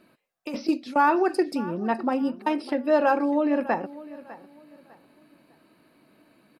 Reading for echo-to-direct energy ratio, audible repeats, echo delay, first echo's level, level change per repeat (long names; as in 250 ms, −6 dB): −17.5 dB, 2, 602 ms, −18.0 dB, −11.0 dB